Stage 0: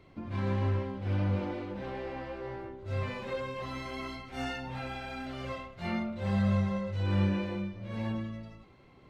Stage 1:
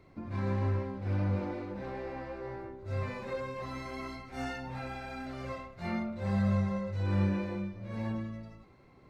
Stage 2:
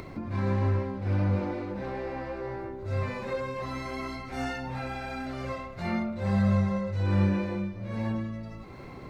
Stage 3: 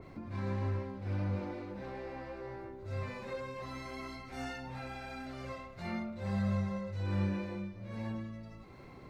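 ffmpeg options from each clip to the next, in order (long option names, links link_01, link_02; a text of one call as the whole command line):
ffmpeg -i in.wav -af "equalizer=frequency=3100:width=3.7:gain=-10,volume=-1dB" out.wav
ffmpeg -i in.wav -af "acompressor=mode=upward:threshold=-36dB:ratio=2.5,volume=4.5dB" out.wav
ffmpeg -i in.wav -af "adynamicequalizer=threshold=0.00355:dfrequency=2300:dqfactor=0.7:tfrequency=2300:tqfactor=0.7:attack=5:release=100:ratio=0.375:range=1.5:mode=boostabove:tftype=highshelf,volume=-8.5dB" out.wav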